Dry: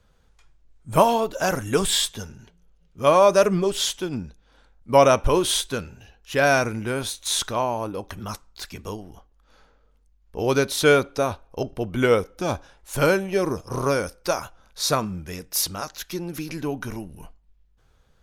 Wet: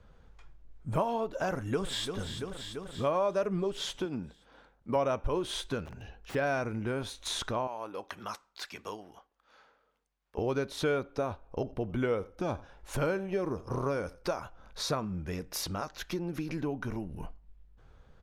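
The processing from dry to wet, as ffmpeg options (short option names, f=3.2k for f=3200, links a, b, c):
-filter_complex "[0:a]asplit=2[a][b];[b]afade=t=in:st=1.49:d=0.01,afade=t=out:st=2.16:d=0.01,aecho=0:1:340|680|1020|1360|1700|2040|2380:0.223872|0.134323|0.080594|0.0483564|0.0290138|0.0174083|0.010445[c];[a][c]amix=inputs=2:normalize=0,asettb=1/sr,asplit=3[d][e][f];[d]atrim=end=4.054[g];[e]atrim=start=4.05:end=4.96,asetpts=PTS-STARTPTS,afade=t=in:d=0.004:c=qsin,afade=t=out:st=0.906:d=0.004:c=qsin,highpass=f=220:p=1[h];[f]atrim=start=4.956[i];[g][h]acrossfade=d=0.004:c1=hsin:c2=qsin[j];[j][i]acrossfade=d=0.004:c1=qsin:c2=hsin,asplit=3[k][l][m];[k]afade=t=out:st=5.85:d=0.02[n];[l]aeval=exprs='(mod(59.6*val(0)+1,2)-1)/59.6':c=same,afade=t=in:st=5.85:d=0.02,afade=t=out:st=6.34:d=0.02[o];[m]afade=t=in:st=6.34:d=0.02[p];[n][o][p]amix=inputs=3:normalize=0,asettb=1/sr,asplit=3[q][r][s];[q]atrim=end=7.674[t];[r]atrim=start=7.67:end=10.38,asetpts=PTS-STARTPTS,afade=t=in:d=0.004:c=qsin,afade=t=out:st=2.706:d=0.004:c=qsin,highpass=f=1.3k:p=1[u];[s]atrim=start=10.376[v];[t][u]acrossfade=d=0.004:c1=hsin:c2=qsin[w];[w][v]acrossfade=d=0.004:c1=qsin:c2=hsin,asettb=1/sr,asplit=3[x][y][z];[x]atrim=end=11.454[aa];[y]atrim=start=11.45:end=14.37,asetpts=PTS-STARTPTS,afade=t=in:d=0.004:c=qsin,afade=t=out:st=2.916:d=0.004:c=qsin,aecho=1:1:86:0.0794,atrim=end_sample=128772[ab];[z]atrim=start=14.366[ac];[aa][ab]acrossfade=d=0.004:c1=hsin:c2=qsin[ad];[ad][ac]acrossfade=d=0.004:c1=qsin:c2=hsin,lowpass=f=1.7k:p=1,acompressor=threshold=-39dB:ratio=2.5,volume=4dB"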